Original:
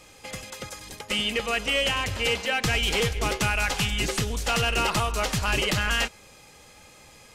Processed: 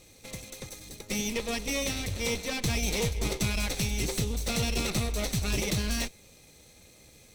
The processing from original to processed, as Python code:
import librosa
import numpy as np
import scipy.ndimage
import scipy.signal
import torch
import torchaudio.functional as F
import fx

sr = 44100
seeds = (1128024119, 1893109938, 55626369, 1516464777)

y = fx.lower_of_two(x, sr, delay_ms=0.49)
y = fx.peak_eq(y, sr, hz=1600.0, db=-11.5, octaves=0.87)
y = y * 10.0 ** (-1.5 / 20.0)